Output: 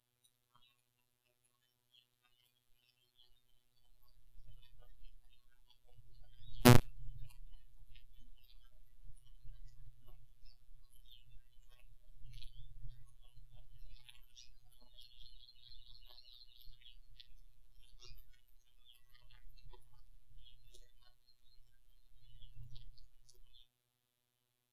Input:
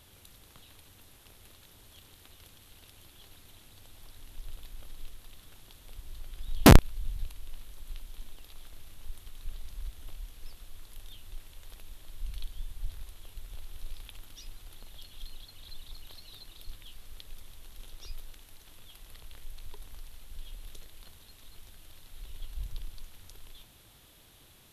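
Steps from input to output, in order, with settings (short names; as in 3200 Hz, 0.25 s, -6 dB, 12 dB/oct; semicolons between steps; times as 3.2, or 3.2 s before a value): spectral noise reduction 18 dB; robotiser 122 Hz; gain -6 dB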